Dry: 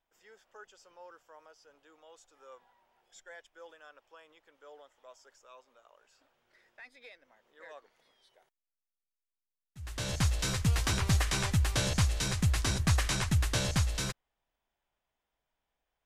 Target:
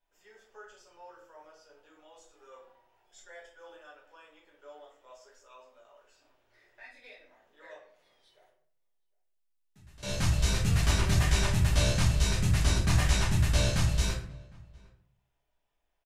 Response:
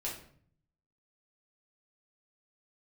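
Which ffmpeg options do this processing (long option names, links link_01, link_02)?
-filter_complex "[0:a]asettb=1/sr,asplit=3[link_01][link_02][link_03];[link_01]atrim=end=7.734[link_04];[link_02]atrim=start=7.73:end=10.03,asetpts=PTS-STARTPTS,afade=type=in:duration=0.004:curve=qsin,afade=type=out:start_time=2.296:duration=0.004:curve=qsin,acompressor=threshold=-56dB:ratio=6[link_05];[link_03]atrim=start=10.026[link_06];[link_04][link_05]acrossfade=duration=0.004:curve1=hsin:curve2=qsin[link_07];[link_07][link_06]acrossfade=duration=0.004:curve1=qsin:curve2=hsin,asplit=2[link_08][link_09];[link_09]adelay=758,volume=-25dB,highshelf=frequency=4000:gain=-17.1[link_10];[link_08][link_10]amix=inputs=2:normalize=0[link_11];[1:a]atrim=start_sample=2205[link_12];[link_11][link_12]afir=irnorm=-1:irlink=0"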